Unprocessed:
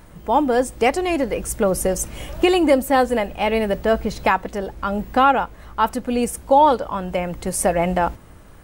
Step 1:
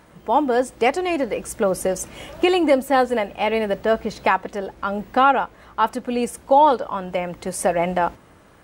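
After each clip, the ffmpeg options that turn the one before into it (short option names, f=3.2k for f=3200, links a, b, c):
-af "highpass=f=230:p=1,highshelf=f=8.3k:g=-9.5"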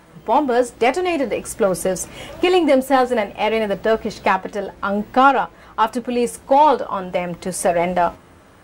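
-filter_complex "[0:a]asplit=2[a][b];[b]asoftclip=type=hard:threshold=-18dB,volume=-8.5dB[c];[a][c]amix=inputs=2:normalize=0,flanger=delay=5.9:depth=5.6:regen=64:speed=0.54:shape=sinusoidal,volume=4.5dB"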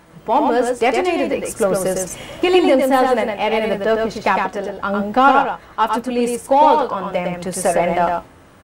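-af "aecho=1:1:107:0.631"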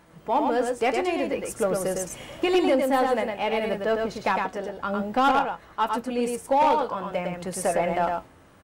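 -af "asoftclip=type=hard:threshold=-7dB,volume=-7.5dB"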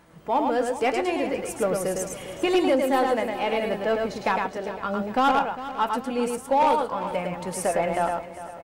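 -af "aecho=1:1:402|804|1206|1608:0.2|0.0938|0.0441|0.0207"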